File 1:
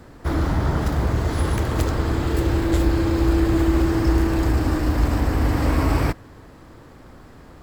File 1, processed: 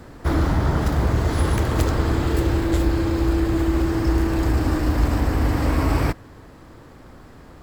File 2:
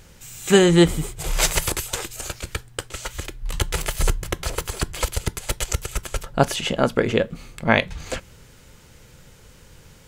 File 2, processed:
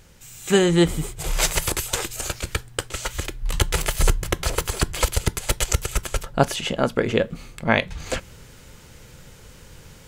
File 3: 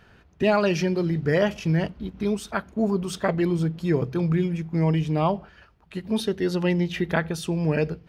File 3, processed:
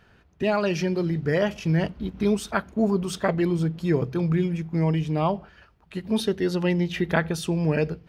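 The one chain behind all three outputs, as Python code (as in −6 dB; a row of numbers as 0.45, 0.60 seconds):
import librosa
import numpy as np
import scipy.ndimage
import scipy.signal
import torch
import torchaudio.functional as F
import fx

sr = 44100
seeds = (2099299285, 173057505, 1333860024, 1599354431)

y = fx.rider(x, sr, range_db=3, speed_s=0.5)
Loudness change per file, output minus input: 0.0, −0.5, −0.5 LU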